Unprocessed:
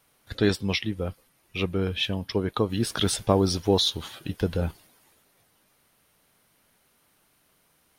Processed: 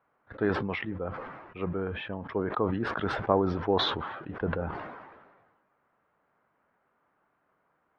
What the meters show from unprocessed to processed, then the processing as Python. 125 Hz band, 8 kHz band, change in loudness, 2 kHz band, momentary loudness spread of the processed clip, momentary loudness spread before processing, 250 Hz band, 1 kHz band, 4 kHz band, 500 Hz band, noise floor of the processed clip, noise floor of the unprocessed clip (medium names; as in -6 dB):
-7.0 dB, under -25 dB, -4.5 dB, -0.5 dB, 14 LU, 12 LU, -5.0 dB, +2.0 dB, -8.5 dB, -3.0 dB, -74 dBFS, -66 dBFS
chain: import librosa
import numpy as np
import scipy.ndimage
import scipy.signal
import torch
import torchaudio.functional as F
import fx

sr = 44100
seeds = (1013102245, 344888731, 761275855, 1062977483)

y = scipy.signal.sosfilt(scipy.signal.butter(4, 1400.0, 'lowpass', fs=sr, output='sos'), x)
y = fx.tilt_eq(y, sr, slope=3.5)
y = fx.sustainer(y, sr, db_per_s=41.0)